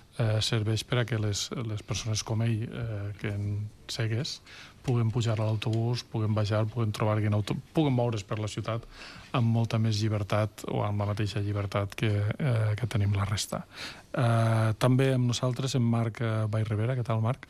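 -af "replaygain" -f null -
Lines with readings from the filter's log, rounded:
track_gain = +11.8 dB
track_peak = 0.148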